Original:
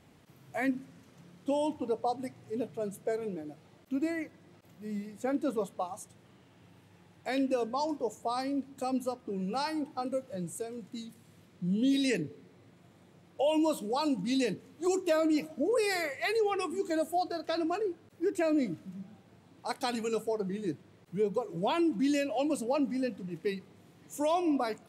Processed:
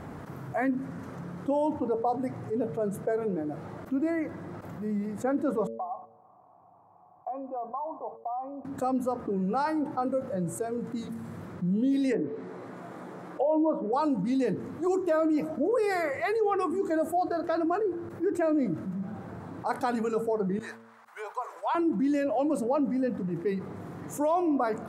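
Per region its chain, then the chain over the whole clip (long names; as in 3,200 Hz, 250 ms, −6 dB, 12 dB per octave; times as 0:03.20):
0:05.67–0:08.65: noise gate −49 dBFS, range −19 dB + formant resonators in series a + downward compressor, threshold −41 dBFS
0:12.12–0:13.93: high-pass filter 250 Hz + treble cut that deepens with the level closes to 960 Hz, closed at −29 dBFS + double-tracking delay 16 ms −7.5 dB
0:20.59–0:21.75: inverse Chebyshev high-pass filter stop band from 250 Hz, stop band 60 dB + downward expander −59 dBFS
whole clip: high shelf with overshoot 2,000 Hz −11.5 dB, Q 1.5; hum removal 113.8 Hz, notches 5; envelope flattener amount 50%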